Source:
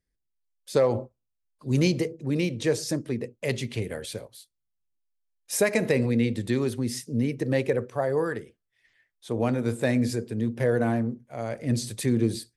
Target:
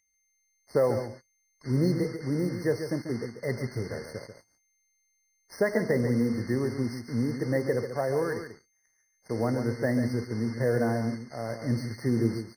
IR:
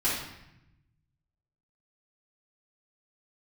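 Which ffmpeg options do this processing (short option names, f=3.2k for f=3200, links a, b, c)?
-filter_complex "[0:a]lowpass=3.2k,aeval=exprs='val(0)+0.01*sin(2*PI*2100*n/s)':c=same,acrusher=bits=5:mix=0:aa=0.5,asplit=2[a][b];[b]aecho=0:1:140:0.355[c];[a][c]amix=inputs=2:normalize=0,afftfilt=real='re*eq(mod(floor(b*sr/1024/2100),2),0)':imag='im*eq(mod(floor(b*sr/1024/2100),2),0)':win_size=1024:overlap=0.75,volume=-2.5dB"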